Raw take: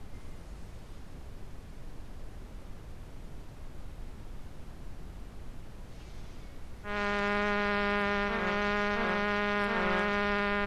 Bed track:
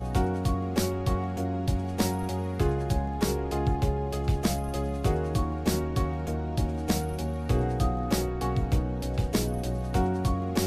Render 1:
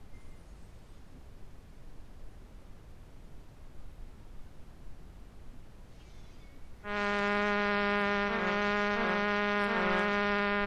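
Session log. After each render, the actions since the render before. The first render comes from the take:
noise reduction from a noise print 6 dB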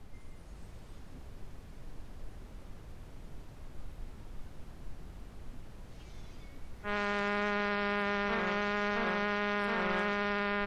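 automatic gain control gain up to 3 dB
brickwall limiter −22.5 dBFS, peak gain reduction 7.5 dB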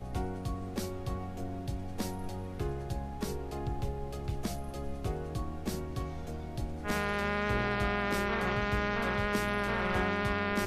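mix in bed track −9.5 dB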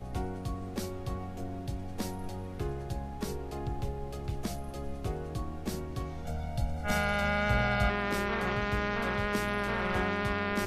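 0:06.25–0:07.90: comb filter 1.4 ms, depth 97%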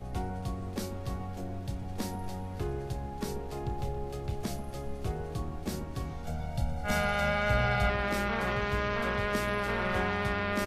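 double-tracking delay 31 ms −11.5 dB
delay that swaps between a low-pass and a high-pass 139 ms, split 1,200 Hz, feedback 59%, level −10 dB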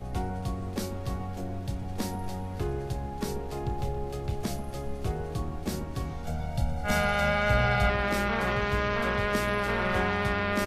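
level +3 dB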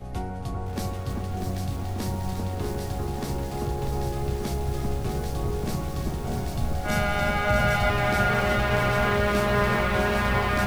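delay that swaps between a low-pass and a high-pass 394 ms, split 1,500 Hz, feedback 81%, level −2.5 dB
feedback echo at a low word length 643 ms, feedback 55%, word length 7 bits, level −5.5 dB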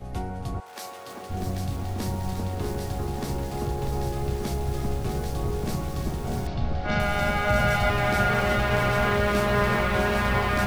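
0:00.59–0:01.29: high-pass filter 1,000 Hz → 360 Hz
0:06.47–0:07.00: low-pass filter 4,700 Hz 24 dB per octave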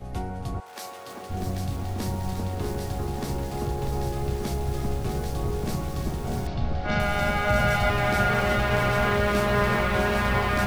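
no processing that can be heard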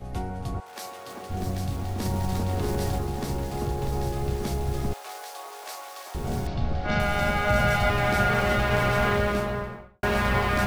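0:02.05–0:02.99: envelope flattener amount 100%
0:04.93–0:06.15: high-pass filter 660 Hz 24 dB per octave
0:09.06–0:10.03: fade out and dull

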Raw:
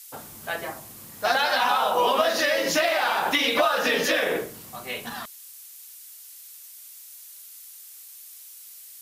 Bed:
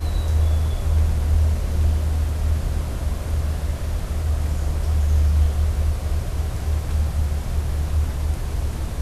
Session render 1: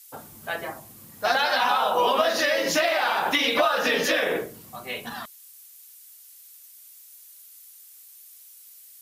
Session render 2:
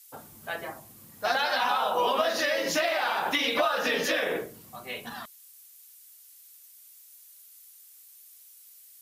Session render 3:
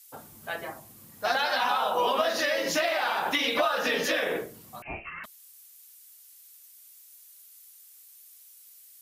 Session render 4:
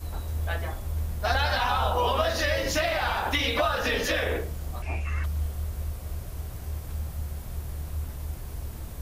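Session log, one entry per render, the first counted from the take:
broadband denoise 6 dB, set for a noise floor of −45 dBFS
level −4 dB
0:04.82–0:05.24: voice inversion scrambler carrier 2,900 Hz
mix in bed −11.5 dB

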